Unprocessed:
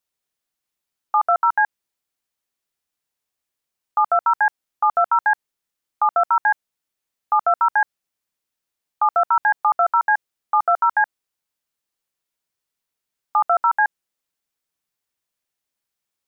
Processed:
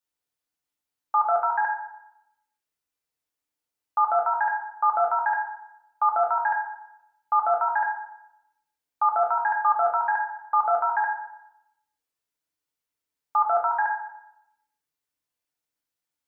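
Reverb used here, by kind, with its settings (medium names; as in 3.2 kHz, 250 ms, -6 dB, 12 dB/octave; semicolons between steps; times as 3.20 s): FDN reverb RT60 0.85 s, low-frequency decay 0.9×, high-frequency decay 0.55×, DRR -0.5 dB; trim -7 dB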